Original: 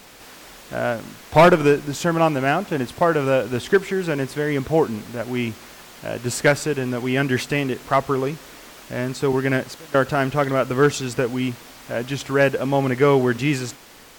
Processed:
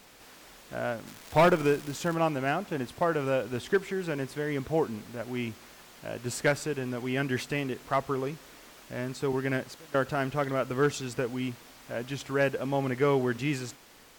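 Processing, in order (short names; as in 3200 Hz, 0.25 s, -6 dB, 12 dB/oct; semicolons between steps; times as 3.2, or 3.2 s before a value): 1.06–2.13 crackle 370/s -23 dBFS; gain -9 dB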